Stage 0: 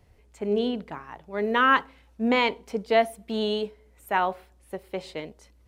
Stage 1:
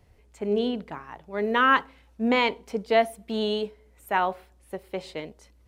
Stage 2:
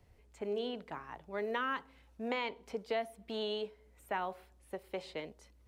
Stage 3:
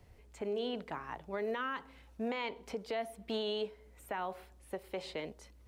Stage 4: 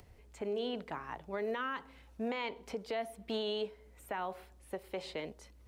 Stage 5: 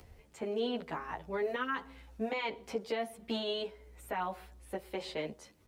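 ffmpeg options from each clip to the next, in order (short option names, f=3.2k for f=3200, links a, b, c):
-af anull
-filter_complex "[0:a]acrossover=split=380|5000[a][b][c];[a]acompressor=threshold=-42dB:ratio=4[d];[b]acompressor=threshold=-29dB:ratio=4[e];[c]acompressor=threshold=-57dB:ratio=4[f];[d][e][f]amix=inputs=3:normalize=0,volume=-5.5dB"
-af "alimiter=level_in=9dB:limit=-24dB:level=0:latency=1:release=99,volume=-9dB,volume=4.5dB"
-af "acompressor=mode=upward:threshold=-56dB:ratio=2.5"
-filter_complex "[0:a]asplit=2[a][b];[b]adelay=11.1,afreqshift=0.39[c];[a][c]amix=inputs=2:normalize=1,volume=5.5dB"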